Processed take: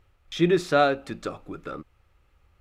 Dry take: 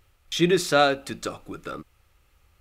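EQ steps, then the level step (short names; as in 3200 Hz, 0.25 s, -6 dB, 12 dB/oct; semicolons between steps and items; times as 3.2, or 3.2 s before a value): high shelf 3500 Hz -12 dB; high shelf 11000 Hz -3.5 dB; 0.0 dB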